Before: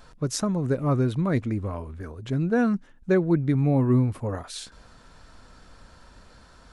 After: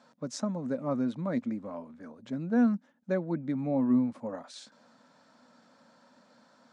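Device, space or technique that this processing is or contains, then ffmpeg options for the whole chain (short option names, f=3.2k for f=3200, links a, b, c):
television speaker: -af "highpass=f=170:w=0.5412,highpass=f=170:w=1.3066,equalizer=f=240:t=q:w=4:g=10,equalizer=f=390:t=q:w=4:g=-8,equalizer=f=570:t=q:w=4:g=8,equalizer=f=870:t=q:w=4:g=4,equalizer=f=2.8k:t=q:w=4:g=-4,lowpass=f=7.7k:w=0.5412,lowpass=f=7.7k:w=1.3066,volume=-9dB"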